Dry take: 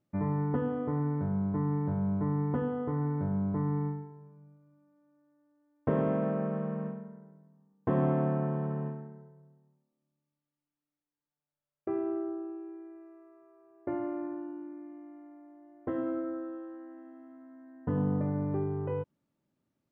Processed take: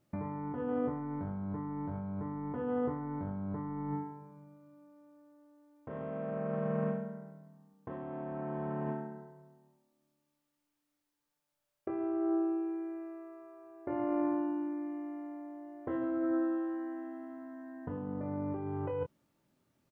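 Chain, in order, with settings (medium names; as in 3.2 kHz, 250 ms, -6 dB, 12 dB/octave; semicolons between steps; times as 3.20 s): peaking EQ 200 Hz -4 dB 2.2 oct; compressor with a negative ratio -39 dBFS, ratio -1; doubling 24 ms -6 dB; trim +3 dB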